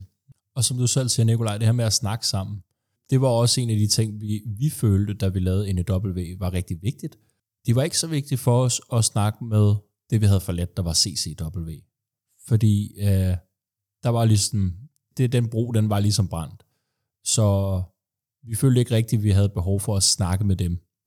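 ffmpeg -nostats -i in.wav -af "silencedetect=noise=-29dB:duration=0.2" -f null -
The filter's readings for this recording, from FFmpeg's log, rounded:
silence_start: 0.00
silence_end: 0.57 | silence_duration: 0.57
silence_start: 2.57
silence_end: 3.12 | silence_duration: 0.55
silence_start: 7.07
silence_end: 7.67 | silence_duration: 0.60
silence_start: 9.78
silence_end: 10.12 | silence_duration: 0.34
silence_start: 11.73
silence_end: 12.48 | silence_duration: 0.75
silence_start: 13.37
silence_end: 14.05 | silence_duration: 0.67
silence_start: 14.72
silence_end: 15.17 | silence_duration: 0.45
silence_start: 16.45
silence_end: 17.26 | silence_duration: 0.81
silence_start: 17.83
silence_end: 18.51 | silence_duration: 0.67
silence_start: 20.77
silence_end: 21.07 | silence_duration: 0.30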